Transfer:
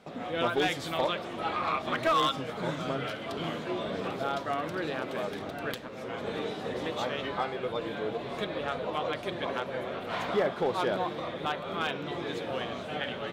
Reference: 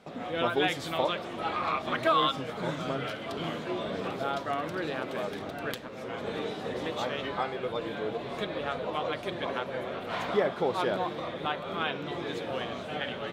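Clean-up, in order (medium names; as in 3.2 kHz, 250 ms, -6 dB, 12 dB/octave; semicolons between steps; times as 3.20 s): clip repair -20 dBFS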